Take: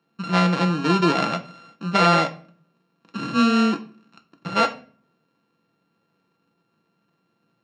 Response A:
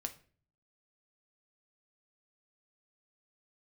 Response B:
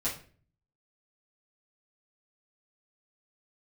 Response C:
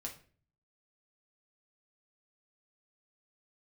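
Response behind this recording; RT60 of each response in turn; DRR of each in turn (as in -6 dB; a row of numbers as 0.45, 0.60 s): A; 0.45, 0.45, 0.45 s; 5.5, -10.0, -1.0 dB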